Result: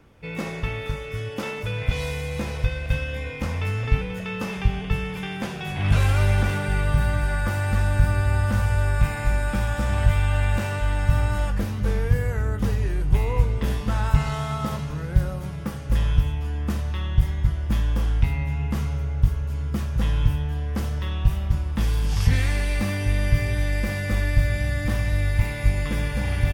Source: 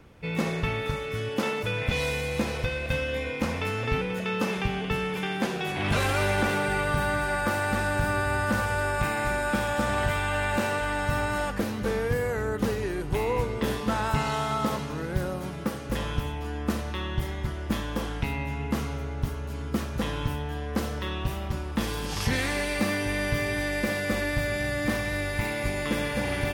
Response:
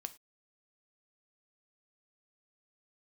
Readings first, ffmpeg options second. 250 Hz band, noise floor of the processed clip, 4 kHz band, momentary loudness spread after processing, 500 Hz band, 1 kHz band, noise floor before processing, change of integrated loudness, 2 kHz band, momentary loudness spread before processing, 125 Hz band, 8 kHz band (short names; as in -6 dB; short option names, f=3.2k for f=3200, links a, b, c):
-0.5 dB, -32 dBFS, -2.0 dB, 8 LU, -3.5 dB, -3.5 dB, -34 dBFS, +3.5 dB, -2.5 dB, 6 LU, +9.0 dB, -1.5 dB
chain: -filter_complex "[0:a]bandreject=f=4.1k:w=20,asplit=2[a][b];[b]adelay=20,volume=-11dB[c];[a][c]amix=inputs=2:normalize=0,asubboost=boost=6:cutoff=120,volume=-2dB"